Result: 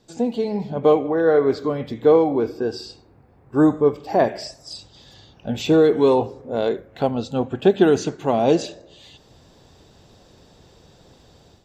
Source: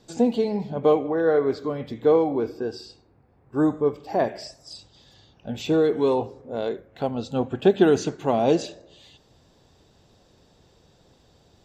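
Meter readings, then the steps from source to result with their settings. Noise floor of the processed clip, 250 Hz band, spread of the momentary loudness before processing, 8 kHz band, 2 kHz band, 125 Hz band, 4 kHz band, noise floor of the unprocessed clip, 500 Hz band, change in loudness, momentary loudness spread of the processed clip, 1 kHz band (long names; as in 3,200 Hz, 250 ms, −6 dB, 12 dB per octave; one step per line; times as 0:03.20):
−53 dBFS, +3.5 dB, 17 LU, can't be measured, +3.5 dB, +4.0 dB, +4.0 dB, −59 dBFS, +3.5 dB, +3.5 dB, 18 LU, +4.0 dB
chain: automatic gain control gain up to 9.5 dB
level −2.5 dB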